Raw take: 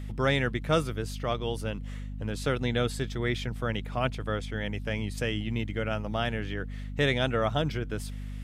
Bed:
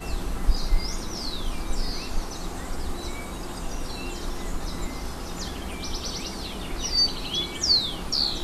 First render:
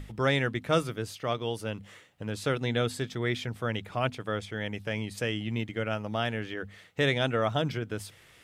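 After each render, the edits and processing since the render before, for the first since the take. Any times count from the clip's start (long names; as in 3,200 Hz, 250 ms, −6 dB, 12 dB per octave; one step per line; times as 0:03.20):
mains-hum notches 50/100/150/200/250 Hz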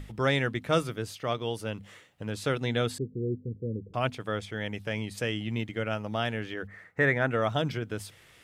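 0:02.98–0:03.94: Butterworth low-pass 500 Hz 72 dB per octave
0:06.67–0:07.31: high shelf with overshoot 2,400 Hz −9 dB, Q 3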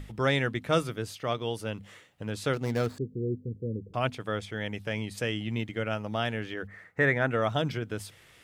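0:02.53–0:02.98: running median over 15 samples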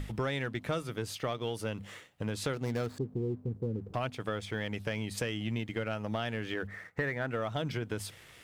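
downward compressor 10 to 1, threshold −33 dBFS, peak gain reduction 13.5 dB
leveller curve on the samples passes 1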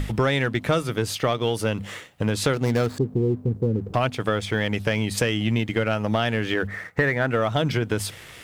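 level +11.5 dB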